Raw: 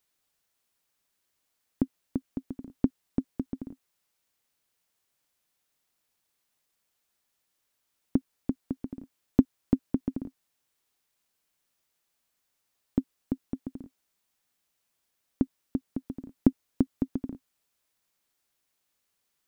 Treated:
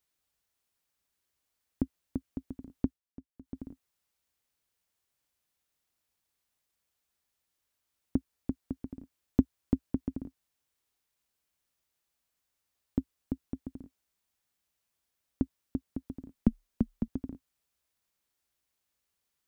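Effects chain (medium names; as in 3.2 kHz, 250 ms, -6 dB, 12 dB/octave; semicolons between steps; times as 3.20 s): peaking EQ 63 Hz +9.5 dB 1.1 oct; 2.82–3.58 s: dip -16.5 dB, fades 0.18 s; 16.33–17.08 s: frequency shift -35 Hz; trim -4.5 dB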